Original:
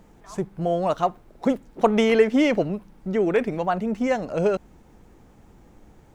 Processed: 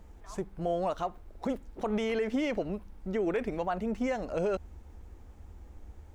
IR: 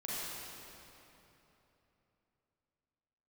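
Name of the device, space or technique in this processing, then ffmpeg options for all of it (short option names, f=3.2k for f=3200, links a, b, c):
car stereo with a boomy subwoofer: -af "lowshelf=f=100:t=q:w=3:g=8.5,alimiter=limit=-17dB:level=0:latency=1:release=85,volume=-5dB"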